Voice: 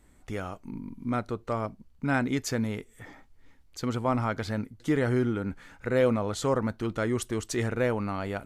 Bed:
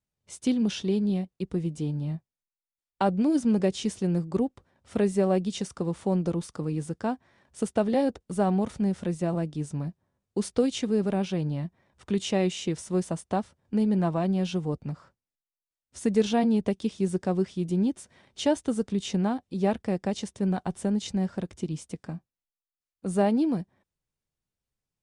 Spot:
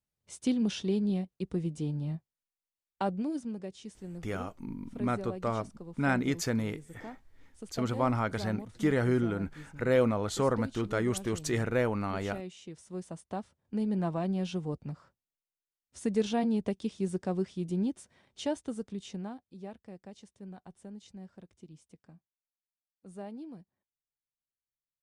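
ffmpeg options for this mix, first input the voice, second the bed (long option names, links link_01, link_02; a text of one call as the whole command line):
ffmpeg -i stem1.wav -i stem2.wav -filter_complex "[0:a]adelay=3950,volume=-1.5dB[link_01];[1:a]volume=7.5dB,afade=type=out:start_time=2.7:duration=0.87:silence=0.223872,afade=type=in:start_time=12.69:duration=1.41:silence=0.281838,afade=type=out:start_time=17.89:duration=1.81:silence=0.199526[link_02];[link_01][link_02]amix=inputs=2:normalize=0" out.wav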